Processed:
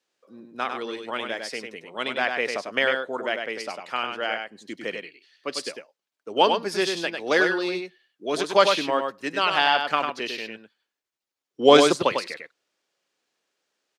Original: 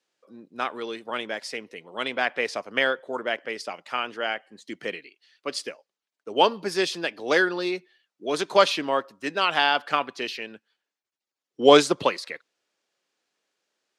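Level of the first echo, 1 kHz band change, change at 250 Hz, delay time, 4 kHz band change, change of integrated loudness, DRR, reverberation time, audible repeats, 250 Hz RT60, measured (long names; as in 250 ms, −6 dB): −5.5 dB, +1.0 dB, +1.0 dB, 99 ms, +1.0 dB, +1.0 dB, no reverb audible, no reverb audible, 1, no reverb audible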